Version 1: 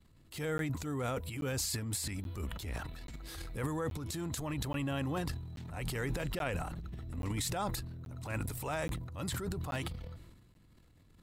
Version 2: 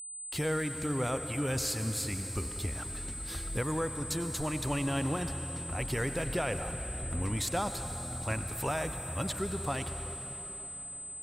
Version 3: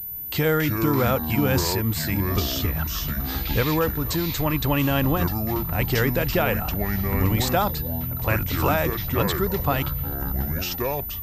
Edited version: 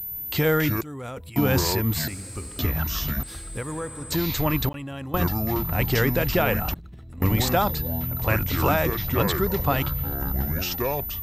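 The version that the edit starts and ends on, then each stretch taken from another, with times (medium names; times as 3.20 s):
3
0.81–1.36 s: from 1
2.08–2.59 s: from 2
3.23–4.12 s: from 2
4.69–5.14 s: from 1
6.74–7.22 s: from 1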